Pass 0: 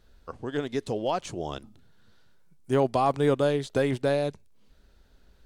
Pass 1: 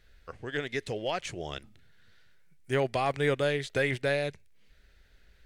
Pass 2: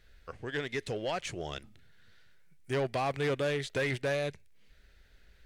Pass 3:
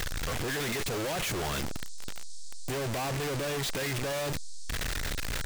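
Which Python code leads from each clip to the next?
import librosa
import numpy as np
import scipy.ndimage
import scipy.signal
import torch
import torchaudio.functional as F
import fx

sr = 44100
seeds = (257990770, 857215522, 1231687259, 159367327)

y1 = fx.graphic_eq(x, sr, hz=(250, 1000, 2000), db=(-7, -8, 12))
y1 = y1 * librosa.db_to_amplitude(-1.5)
y2 = 10.0 ** (-25.0 / 20.0) * np.tanh(y1 / 10.0 ** (-25.0 / 20.0))
y3 = np.sign(y2) * np.sqrt(np.mean(np.square(y2)))
y3 = fx.dmg_noise_band(y3, sr, seeds[0], low_hz=4000.0, high_hz=8900.0, level_db=-55.0)
y3 = y3 * librosa.db_to_amplitude(4.0)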